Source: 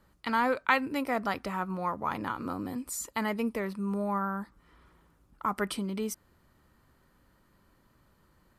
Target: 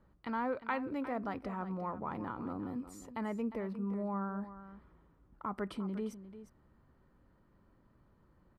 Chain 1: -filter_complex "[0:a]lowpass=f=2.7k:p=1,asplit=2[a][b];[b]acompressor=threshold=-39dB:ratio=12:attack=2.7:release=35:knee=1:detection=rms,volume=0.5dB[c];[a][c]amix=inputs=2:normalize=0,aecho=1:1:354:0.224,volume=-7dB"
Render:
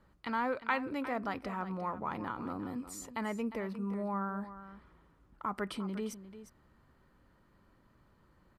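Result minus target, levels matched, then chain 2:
2000 Hz band +4.0 dB
-filter_complex "[0:a]lowpass=f=800:p=1,asplit=2[a][b];[b]acompressor=threshold=-39dB:ratio=12:attack=2.7:release=35:knee=1:detection=rms,volume=0.5dB[c];[a][c]amix=inputs=2:normalize=0,aecho=1:1:354:0.224,volume=-7dB"

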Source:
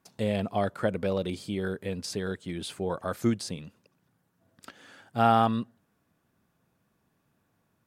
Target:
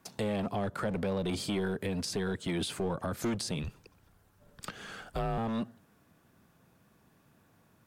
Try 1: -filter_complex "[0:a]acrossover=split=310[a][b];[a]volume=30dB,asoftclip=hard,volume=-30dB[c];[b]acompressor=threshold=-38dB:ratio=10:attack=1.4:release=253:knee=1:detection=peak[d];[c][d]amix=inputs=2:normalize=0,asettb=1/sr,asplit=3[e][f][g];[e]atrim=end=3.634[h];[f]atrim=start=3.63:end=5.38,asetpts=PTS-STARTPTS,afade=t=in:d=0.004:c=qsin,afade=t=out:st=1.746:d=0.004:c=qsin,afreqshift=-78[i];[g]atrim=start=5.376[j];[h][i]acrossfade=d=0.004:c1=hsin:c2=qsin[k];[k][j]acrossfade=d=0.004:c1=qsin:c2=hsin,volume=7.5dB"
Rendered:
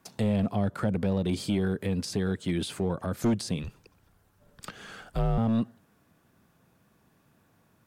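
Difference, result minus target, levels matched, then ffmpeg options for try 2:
overloaded stage: distortion -7 dB
-filter_complex "[0:a]acrossover=split=310[a][b];[a]volume=41dB,asoftclip=hard,volume=-41dB[c];[b]acompressor=threshold=-38dB:ratio=10:attack=1.4:release=253:knee=1:detection=peak[d];[c][d]amix=inputs=2:normalize=0,asettb=1/sr,asplit=3[e][f][g];[e]atrim=end=3.634[h];[f]atrim=start=3.63:end=5.38,asetpts=PTS-STARTPTS,afade=t=in:d=0.004:c=qsin,afade=t=out:st=1.746:d=0.004:c=qsin,afreqshift=-78[i];[g]atrim=start=5.376[j];[h][i]acrossfade=d=0.004:c1=hsin:c2=qsin[k];[k][j]acrossfade=d=0.004:c1=qsin:c2=hsin,volume=7.5dB"

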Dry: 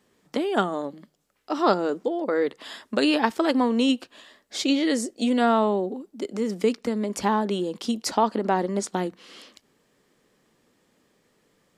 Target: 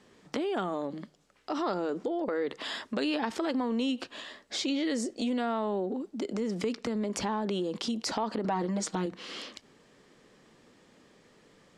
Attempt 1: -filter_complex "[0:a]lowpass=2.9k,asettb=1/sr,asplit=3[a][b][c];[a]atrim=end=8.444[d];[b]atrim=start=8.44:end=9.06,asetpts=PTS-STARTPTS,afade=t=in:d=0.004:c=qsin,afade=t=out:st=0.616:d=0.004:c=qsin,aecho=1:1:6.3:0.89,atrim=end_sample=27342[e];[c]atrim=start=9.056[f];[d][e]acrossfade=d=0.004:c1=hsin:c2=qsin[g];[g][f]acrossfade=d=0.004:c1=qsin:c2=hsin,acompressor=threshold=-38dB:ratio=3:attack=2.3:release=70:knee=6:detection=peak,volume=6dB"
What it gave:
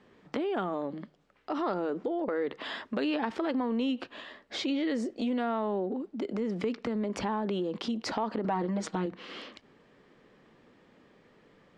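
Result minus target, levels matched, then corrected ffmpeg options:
8000 Hz band -9.0 dB
-filter_complex "[0:a]lowpass=7.1k,asettb=1/sr,asplit=3[a][b][c];[a]atrim=end=8.444[d];[b]atrim=start=8.44:end=9.06,asetpts=PTS-STARTPTS,afade=t=in:d=0.004:c=qsin,afade=t=out:st=0.616:d=0.004:c=qsin,aecho=1:1:6.3:0.89,atrim=end_sample=27342[e];[c]atrim=start=9.056[f];[d][e]acrossfade=d=0.004:c1=hsin:c2=qsin[g];[g][f]acrossfade=d=0.004:c1=qsin:c2=hsin,acompressor=threshold=-38dB:ratio=3:attack=2.3:release=70:knee=6:detection=peak,volume=6dB"

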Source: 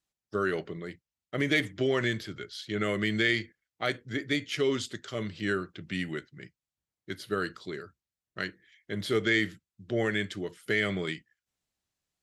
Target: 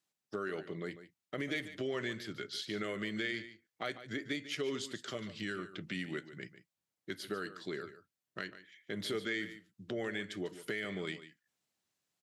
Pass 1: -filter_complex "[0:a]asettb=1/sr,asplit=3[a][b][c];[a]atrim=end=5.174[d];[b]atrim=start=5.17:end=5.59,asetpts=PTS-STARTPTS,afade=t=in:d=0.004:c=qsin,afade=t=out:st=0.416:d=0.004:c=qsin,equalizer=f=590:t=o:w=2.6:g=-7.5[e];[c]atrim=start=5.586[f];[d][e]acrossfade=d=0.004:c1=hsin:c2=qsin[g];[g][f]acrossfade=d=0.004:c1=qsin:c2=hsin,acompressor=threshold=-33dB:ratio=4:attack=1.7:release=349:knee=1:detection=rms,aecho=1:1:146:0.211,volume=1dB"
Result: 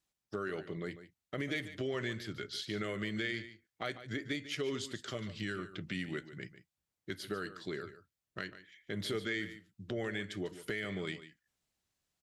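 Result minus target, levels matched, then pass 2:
125 Hz band +4.0 dB
-filter_complex "[0:a]asettb=1/sr,asplit=3[a][b][c];[a]atrim=end=5.174[d];[b]atrim=start=5.17:end=5.59,asetpts=PTS-STARTPTS,afade=t=in:d=0.004:c=qsin,afade=t=out:st=0.416:d=0.004:c=qsin,equalizer=f=590:t=o:w=2.6:g=-7.5[e];[c]atrim=start=5.586[f];[d][e]acrossfade=d=0.004:c1=hsin:c2=qsin[g];[g][f]acrossfade=d=0.004:c1=qsin:c2=hsin,acompressor=threshold=-33dB:ratio=4:attack=1.7:release=349:knee=1:detection=rms,highpass=150,aecho=1:1:146:0.211,volume=1dB"

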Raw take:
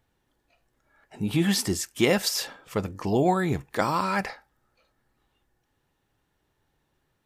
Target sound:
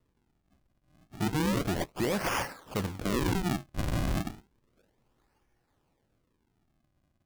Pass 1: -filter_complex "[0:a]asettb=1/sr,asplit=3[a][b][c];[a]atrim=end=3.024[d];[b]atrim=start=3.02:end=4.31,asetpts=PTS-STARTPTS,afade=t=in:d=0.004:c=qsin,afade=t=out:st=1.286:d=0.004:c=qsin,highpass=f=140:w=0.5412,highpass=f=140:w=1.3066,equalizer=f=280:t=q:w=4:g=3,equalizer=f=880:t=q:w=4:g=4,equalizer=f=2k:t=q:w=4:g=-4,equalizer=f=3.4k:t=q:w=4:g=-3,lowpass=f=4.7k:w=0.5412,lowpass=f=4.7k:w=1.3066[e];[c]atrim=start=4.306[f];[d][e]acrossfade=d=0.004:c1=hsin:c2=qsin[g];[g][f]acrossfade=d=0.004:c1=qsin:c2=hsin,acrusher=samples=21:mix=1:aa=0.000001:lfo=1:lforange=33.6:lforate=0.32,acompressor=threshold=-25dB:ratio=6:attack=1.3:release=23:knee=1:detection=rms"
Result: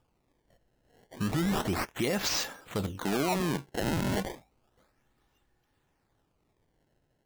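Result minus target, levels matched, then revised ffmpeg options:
decimation with a swept rate: distortion -7 dB
-filter_complex "[0:a]asettb=1/sr,asplit=3[a][b][c];[a]atrim=end=3.024[d];[b]atrim=start=3.02:end=4.31,asetpts=PTS-STARTPTS,afade=t=in:d=0.004:c=qsin,afade=t=out:st=1.286:d=0.004:c=qsin,highpass=f=140:w=0.5412,highpass=f=140:w=1.3066,equalizer=f=280:t=q:w=4:g=3,equalizer=f=880:t=q:w=4:g=4,equalizer=f=2k:t=q:w=4:g=-4,equalizer=f=3.4k:t=q:w=4:g=-3,lowpass=f=4.7k:w=0.5412,lowpass=f=4.7k:w=1.3066[e];[c]atrim=start=4.306[f];[d][e]acrossfade=d=0.004:c1=hsin:c2=qsin[g];[g][f]acrossfade=d=0.004:c1=qsin:c2=hsin,acrusher=samples=55:mix=1:aa=0.000001:lfo=1:lforange=88:lforate=0.32,acompressor=threshold=-25dB:ratio=6:attack=1.3:release=23:knee=1:detection=rms"

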